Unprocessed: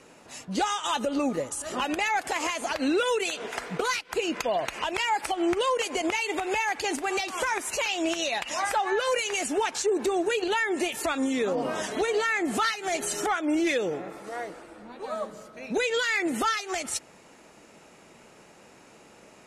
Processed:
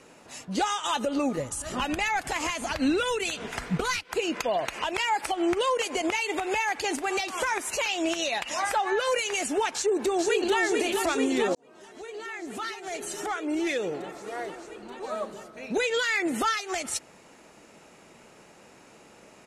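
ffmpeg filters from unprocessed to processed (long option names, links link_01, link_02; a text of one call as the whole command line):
ffmpeg -i in.wav -filter_complex "[0:a]asplit=3[link_01][link_02][link_03];[link_01]afade=type=out:start_time=1.37:duration=0.02[link_04];[link_02]asubboost=boost=7:cutoff=180,afade=type=in:start_time=1.37:duration=0.02,afade=type=out:start_time=4.02:duration=0.02[link_05];[link_03]afade=type=in:start_time=4.02:duration=0.02[link_06];[link_04][link_05][link_06]amix=inputs=3:normalize=0,asplit=2[link_07][link_08];[link_08]afade=type=in:start_time=9.73:duration=0.01,afade=type=out:start_time=10.59:duration=0.01,aecho=0:1:440|880|1320|1760|2200|2640|3080|3520|3960|4400|4840|5280:0.595662|0.47653|0.381224|0.304979|0.243983|0.195187|0.156149|0.124919|0.0999355|0.0799484|0.0639587|0.051167[link_09];[link_07][link_09]amix=inputs=2:normalize=0,asplit=2[link_10][link_11];[link_10]atrim=end=11.55,asetpts=PTS-STARTPTS,afade=type=out:start_time=11.546:duration=0.004:curve=hsin[link_12];[link_11]atrim=start=11.55,asetpts=PTS-STARTPTS,afade=type=in:duration=2.97[link_13];[link_12][link_13]concat=n=2:v=0:a=1" out.wav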